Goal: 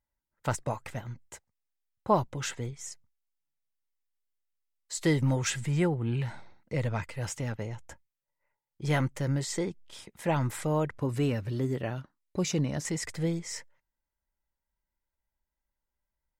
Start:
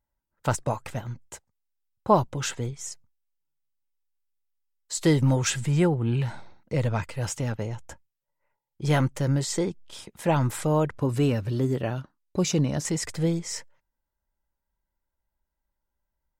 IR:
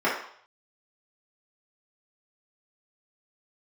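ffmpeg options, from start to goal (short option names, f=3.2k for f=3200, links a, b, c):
-af "equalizer=f=2k:t=o:w=0.42:g=5,volume=-5dB"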